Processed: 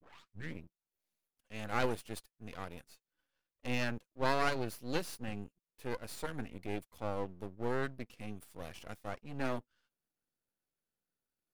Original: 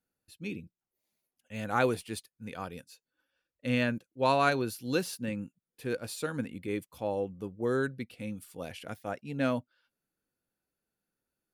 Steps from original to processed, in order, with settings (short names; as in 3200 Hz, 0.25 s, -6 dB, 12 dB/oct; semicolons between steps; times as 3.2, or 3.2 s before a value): tape start at the beginning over 0.61 s; half-wave rectifier; gain -2 dB